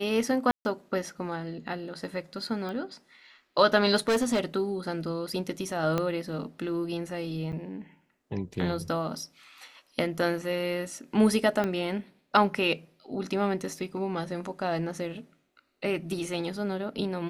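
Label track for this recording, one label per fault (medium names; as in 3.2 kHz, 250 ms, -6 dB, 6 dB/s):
0.510000	0.650000	dropout 140 ms
2.690000	2.690000	pop -25 dBFS
4.080000	4.400000	clipped -21 dBFS
5.980000	5.980000	pop -14 dBFS
7.520000	7.530000	dropout 8.2 ms
11.640000	11.640000	pop -16 dBFS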